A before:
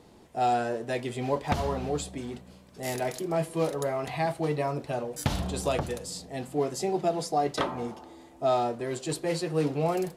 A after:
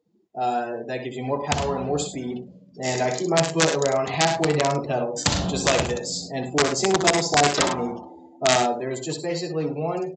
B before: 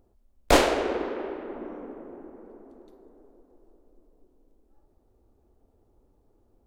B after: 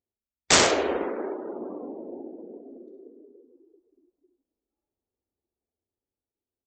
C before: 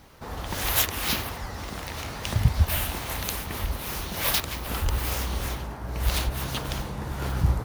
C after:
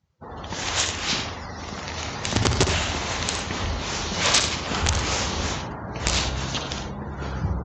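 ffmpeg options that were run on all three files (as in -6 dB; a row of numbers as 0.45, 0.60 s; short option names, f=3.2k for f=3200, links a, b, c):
-af "bandreject=f=60:t=h:w=6,bandreject=f=120:t=h:w=6,dynaudnorm=f=270:g=13:m=6.5dB,aresample=16000,aeval=exprs='(mod(3.98*val(0)+1,2)-1)/3.98':c=same,aresample=44100,highpass=74,highshelf=f=6.2k:g=10,aecho=1:1:62|73|102|107:0.398|0.126|0.237|0.119,afftdn=nr=28:nf=-40"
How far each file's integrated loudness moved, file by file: +7.0, +3.0, +3.0 LU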